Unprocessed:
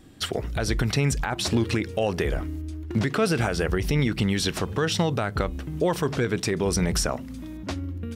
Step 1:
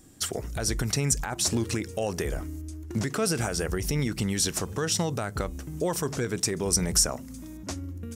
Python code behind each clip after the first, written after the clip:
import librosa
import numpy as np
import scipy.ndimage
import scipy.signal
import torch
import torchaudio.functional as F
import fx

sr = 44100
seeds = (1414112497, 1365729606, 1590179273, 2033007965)

y = fx.high_shelf_res(x, sr, hz=4900.0, db=10.0, q=1.5)
y = y * librosa.db_to_amplitude(-4.5)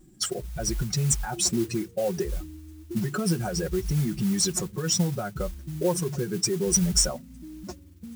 y = fx.spec_expand(x, sr, power=1.8)
y = y + 0.91 * np.pad(y, (int(5.5 * sr / 1000.0), 0))[:len(y)]
y = fx.mod_noise(y, sr, seeds[0], snr_db=18)
y = y * librosa.db_to_amplitude(-1.0)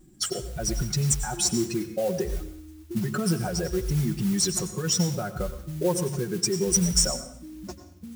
y = fx.rev_plate(x, sr, seeds[1], rt60_s=0.62, hf_ratio=0.9, predelay_ms=80, drr_db=10.5)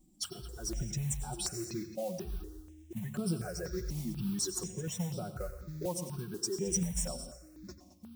y = x + 10.0 ** (-14.0 / 20.0) * np.pad(x, (int(218 * sr / 1000.0), 0))[:len(x)]
y = fx.phaser_held(y, sr, hz=4.1, low_hz=410.0, high_hz=6500.0)
y = y * librosa.db_to_amplitude(-8.0)